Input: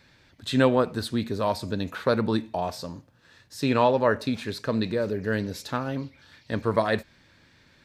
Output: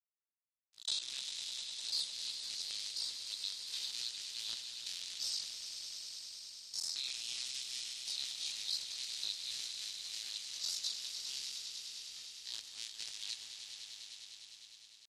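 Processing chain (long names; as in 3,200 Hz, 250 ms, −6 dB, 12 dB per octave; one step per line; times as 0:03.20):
sub-harmonics by changed cycles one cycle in 3, muted
noise gate −53 dBFS, range −55 dB
inverse Chebyshev high-pass filter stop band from 1,300 Hz, stop band 60 dB
downward compressor 5 to 1, threshold −48 dBFS, peak gain reduction 14 dB
leveller curve on the samples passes 3
hard clipping −27 dBFS, distortion −42 dB
tempo change 0.52×
high-frequency loss of the air 71 metres
echo that builds up and dies away 101 ms, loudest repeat 5, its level −11 dB
level +5 dB
MP3 56 kbit/s 44,100 Hz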